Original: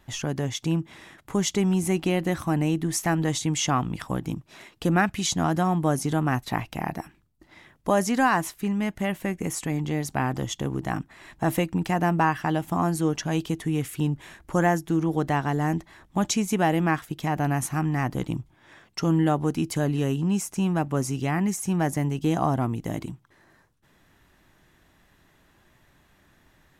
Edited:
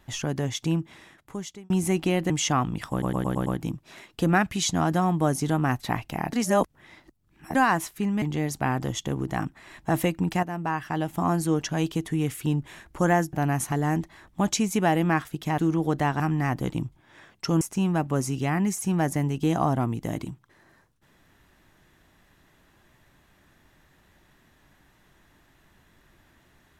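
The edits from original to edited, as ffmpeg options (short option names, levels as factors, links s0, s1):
-filter_complex "[0:a]asplit=17[s0][s1][s2][s3][s4][s5][s6][s7][s8][s9][s10][s11][s12][s13][s14][s15][s16];[s0]atrim=end=1.7,asetpts=PTS-STARTPTS,afade=t=out:st=0.7:d=1[s17];[s1]atrim=start=1.7:end=2.302,asetpts=PTS-STARTPTS,afade=t=in:d=0.004:c=hsin[s18];[s2]atrim=start=3.478:end=4.202[s19];[s3]atrim=start=4.088:end=4.202[s20];[s4]atrim=start=4.088:end=4.202[s21];[s5]atrim=start=4.088:end=4.202[s22];[s6]atrim=start=4.088:end=4.202[s23];[s7]atrim=start=4.088:end=6.962[s24];[s8]atrim=start=6.958:end=8.182,asetpts=PTS-STARTPTS,areverse[s25];[s9]atrim=start=8.178:end=8.852[s26];[s10]atrim=start=9.758:end=11.97,asetpts=PTS-STARTPTS,afade=t=out:st=2.208:d=0.004:c=hsin:silence=0.237137[s27];[s11]atrim=start=11.97:end=14.872,asetpts=PTS-STARTPTS,afade=t=in:d=0.85:silence=0.237137[s28];[s12]atrim=start=17.348:end=17.742[s29];[s13]atrim=start=15.488:end=17.352[s30];[s14]atrim=start=14.868:end=15.492[s31];[s15]atrim=start=17.738:end=19.152[s32];[s16]atrim=start=20.418[s33];[s17][s18]concat=n=2:v=0:a=1[s34];[s34][s19]acrossfade=d=0.004:c1=hsin:c2=hsin[s35];[s35][s20]acrossfade=d=0.004:c1=hsin:c2=hsin[s36];[s36][s21]acrossfade=d=0.004:c1=hsin:c2=hsin[s37];[s37][s22]acrossfade=d=0.004:c1=hsin:c2=hsin[s38];[s38][s23]acrossfade=d=0.004:c1=hsin:c2=hsin[s39];[s39][s24]acrossfade=d=0.004:c1=hsin:c2=hsin[s40];[s40][s25]acrossfade=d=0.004:c1=hsin:c2=hsin[s41];[s41][s26]acrossfade=d=0.004:c1=hsin:c2=hsin[s42];[s27][s28]concat=n=2:v=0:a=1[s43];[s42][s43]acrossfade=d=0.004:c1=hsin:c2=hsin[s44];[s44][s29]acrossfade=d=0.004:c1=hsin:c2=hsin[s45];[s45][s30]acrossfade=d=0.004:c1=hsin:c2=hsin[s46];[s46][s31]acrossfade=d=0.004:c1=hsin:c2=hsin[s47];[s47][s32]acrossfade=d=0.004:c1=hsin:c2=hsin[s48];[s48][s33]acrossfade=d=0.004:c1=hsin:c2=hsin"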